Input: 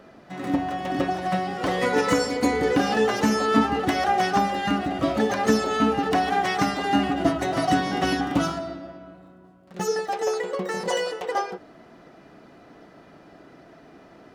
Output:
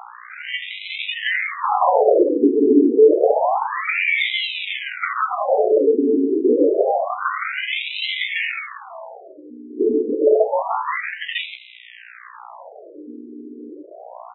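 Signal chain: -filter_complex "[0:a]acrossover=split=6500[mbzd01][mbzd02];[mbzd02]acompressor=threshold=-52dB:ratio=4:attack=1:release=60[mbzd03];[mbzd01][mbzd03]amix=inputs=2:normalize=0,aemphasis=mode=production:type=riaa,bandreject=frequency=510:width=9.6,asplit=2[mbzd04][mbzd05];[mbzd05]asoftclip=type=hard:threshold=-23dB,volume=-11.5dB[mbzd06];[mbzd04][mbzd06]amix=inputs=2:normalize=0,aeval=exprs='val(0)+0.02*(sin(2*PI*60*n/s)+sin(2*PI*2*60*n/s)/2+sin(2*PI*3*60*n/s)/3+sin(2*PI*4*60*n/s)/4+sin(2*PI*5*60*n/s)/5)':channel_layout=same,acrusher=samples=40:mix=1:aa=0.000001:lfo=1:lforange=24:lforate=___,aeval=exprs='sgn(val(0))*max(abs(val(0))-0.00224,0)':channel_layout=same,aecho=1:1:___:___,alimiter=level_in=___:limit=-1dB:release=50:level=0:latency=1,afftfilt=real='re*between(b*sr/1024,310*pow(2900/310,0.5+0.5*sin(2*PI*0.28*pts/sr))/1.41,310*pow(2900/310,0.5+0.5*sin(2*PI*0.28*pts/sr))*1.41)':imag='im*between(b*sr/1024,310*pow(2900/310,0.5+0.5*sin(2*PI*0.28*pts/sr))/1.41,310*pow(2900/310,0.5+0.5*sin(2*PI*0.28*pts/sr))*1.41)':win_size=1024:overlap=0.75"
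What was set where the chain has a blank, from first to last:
0.44, 78, 0.141, 14dB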